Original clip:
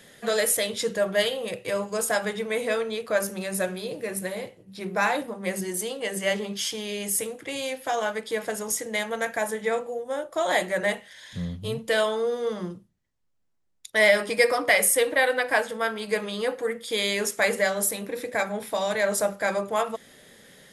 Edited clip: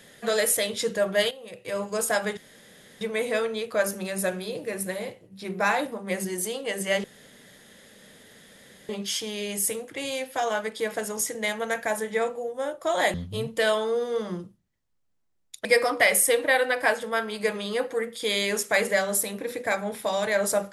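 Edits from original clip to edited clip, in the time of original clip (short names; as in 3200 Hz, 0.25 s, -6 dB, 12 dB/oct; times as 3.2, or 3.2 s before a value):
1.31–1.85 fade in quadratic, from -13 dB
2.37 insert room tone 0.64 s
6.4 insert room tone 1.85 s
10.65–11.45 cut
13.96–14.33 cut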